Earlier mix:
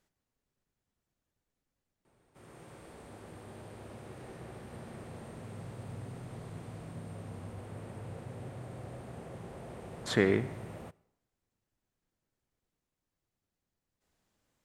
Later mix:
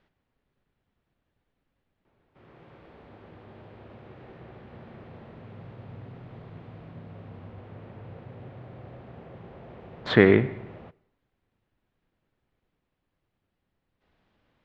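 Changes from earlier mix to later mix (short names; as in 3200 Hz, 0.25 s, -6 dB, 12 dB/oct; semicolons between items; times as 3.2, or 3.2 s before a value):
speech +9.5 dB; master: add LPF 3600 Hz 24 dB/oct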